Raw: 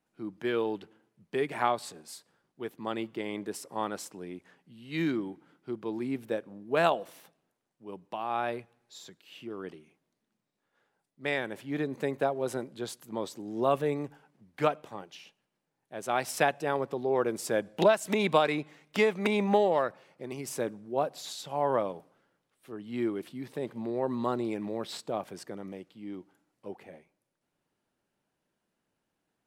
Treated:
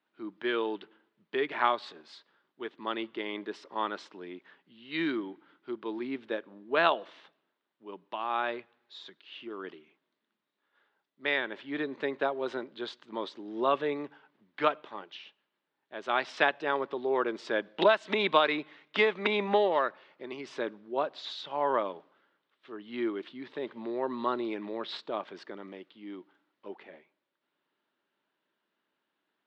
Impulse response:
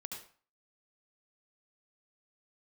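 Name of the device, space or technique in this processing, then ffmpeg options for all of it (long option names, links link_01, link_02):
phone earpiece: -af "highpass=390,equalizer=frequency=500:width_type=q:width=4:gain=-7,equalizer=frequency=740:width_type=q:width=4:gain=-8,equalizer=frequency=2400:width_type=q:width=4:gain=-3,equalizer=frequency=3600:width_type=q:width=4:gain=3,lowpass=frequency=3800:width=0.5412,lowpass=frequency=3800:width=1.3066,volume=4.5dB"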